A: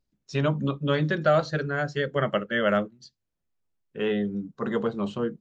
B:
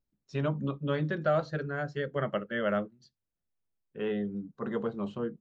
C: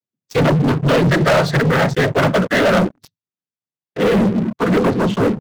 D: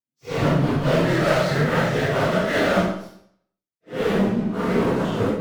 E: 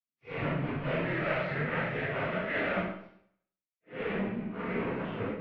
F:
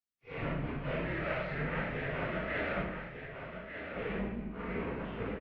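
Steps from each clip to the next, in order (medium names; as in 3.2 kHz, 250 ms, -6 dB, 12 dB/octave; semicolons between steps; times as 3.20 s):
treble shelf 3.1 kHz -9.5 dB; trim -5.5 dB
noise-vocoded speech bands 16; waveshaping leveller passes 5; trim +5.5 dB
phase randomisation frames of 200 ms; reverberation RT60 0.65 s, pre-delay 15 ms, DRR 6 dB; trim -6 dB
four-pole ladder low-pass 2.7 kHz, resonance 55%; trim -3 dB
octave divider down 2 oct, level -5 dB; delay 1199 ms -7.5 dB; trim -4.5 dB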